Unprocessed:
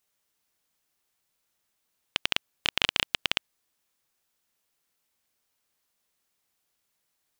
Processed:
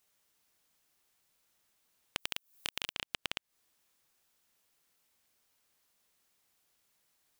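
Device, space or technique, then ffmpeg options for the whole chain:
serial compression, peaks first: -filter_complex "[0:a]asettb=1/sr,asplit=3[s0][s1][s2];[s0]atrim=end=2.184[s3];[s1]atrim=start=2.18:end=2.93,asetpts=PTS-STARTPTS,afade=t=in:d=0.004:c=qsin,afade=t=out:st=0.746:d=0.004:c=qsin,aemphasis=mode=production:type=50kf[s4];[s2]atrim=start=2.926[s5];[s3][s4]acrossfade=d=0.004:c1=hsin:c2=qsin[s6];[s6][s5]acrossfade=d=0.004:c1=qsin:c2=hsin,acompressor=threshold=0.0282:ratio=5,acompressor=threshold=0.0141:ratio=2,volume=1.33"

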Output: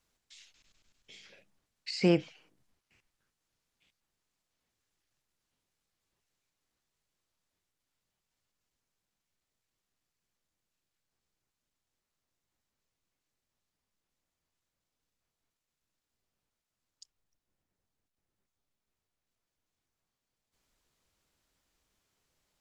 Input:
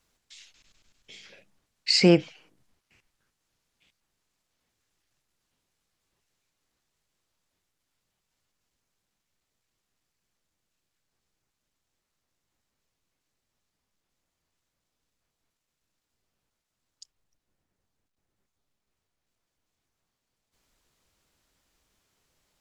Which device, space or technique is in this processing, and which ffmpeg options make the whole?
de-esser from a sidechain: -filter_complex "[0:a]asplit=2[s0][s1];[s1]highpass=4200,apad=whole_len=997006[s2];[s0][s2]sidechaincompress=threshold=0.0224:ratio=4:attack=2.7:release=59,volume=0.531"

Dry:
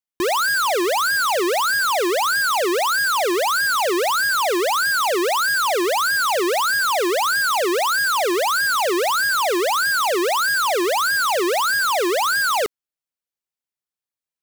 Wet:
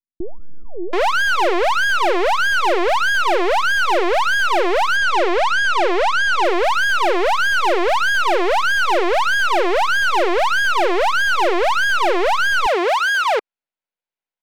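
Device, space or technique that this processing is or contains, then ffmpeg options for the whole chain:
crystal radio: -filter_complex "[0:a]highpass=250,lowpass=2500,bandreject=f=1200:w=6.9,aeval=exprs='if(lt(val(0),0),0.251*val(0),val(0))':c=same,equalizer=f=1800:w=6.3:g=-3,asettb=1/sr,asplit=3[s0][s1][s2];[s0]atrim=end=4.234[s3];[s1]atrim=start=4.23:end=5.72,asetpts=PTS-STARTPTS,afade=t=in:d=0.004:c=qsin,afade=t=out:st=1.486:d=0.004:c=qsin,lowpass=8400[s4];[s2]atrim=start=5.716[s5];[s3][s4]acrossfade=d=0.004:c1=hsin:c2=qsin[s6];[s6][s5]acrossfade=d=0.004:c1=qsin:c2=hsin,acrossover=split=310[s7][s8];[s8]adelay=730[s9];[s7][s9]amix=inputs=2:normalize=0,volume=2.66"

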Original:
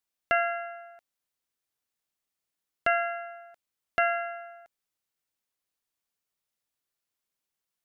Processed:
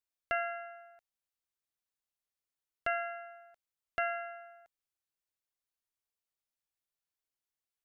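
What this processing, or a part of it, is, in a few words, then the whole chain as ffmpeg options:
low shelf boost with a cut just above: -af "lowshelf=f=100:g=6,equalizer=f=210:t=o:w=0.82:g=-6,volume=0.398"

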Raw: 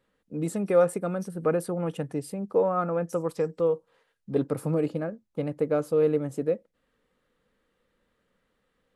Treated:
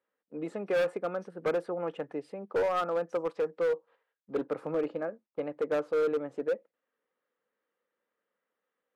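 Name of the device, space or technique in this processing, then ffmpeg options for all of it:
walkie-talkie: -af "highpass=410,lowpass=2400,asoftclip=type=hard:threshold=0.0631,agate=range=0.355:threshold=0.00178:ratio=16:detection=peak"

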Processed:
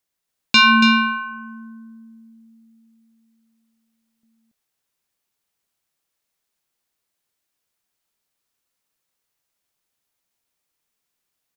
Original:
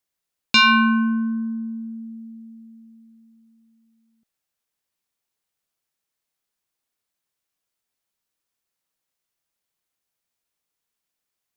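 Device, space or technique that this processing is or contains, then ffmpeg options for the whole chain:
ducked delay: -filter_complex "[0:a]asplit=3[s0][s1][s2];[s1]adelay=281,volume=0.794[s3];[s2]apad=whole_len=522607[s4];[s3][s4]sidechaincompress=threshold=0.0794:ratio=3:attack=16:release=403[s5];[s0][s5]amix=inputs=2:normalize=0,volume=1.26"

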